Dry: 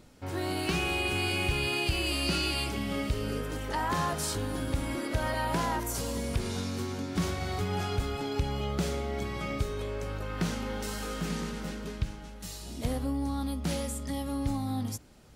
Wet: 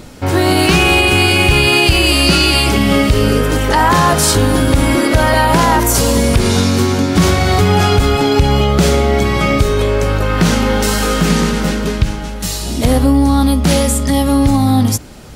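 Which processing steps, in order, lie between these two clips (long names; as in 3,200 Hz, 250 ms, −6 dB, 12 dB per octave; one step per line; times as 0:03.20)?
boost into a limiter +22 dB
level −1 dB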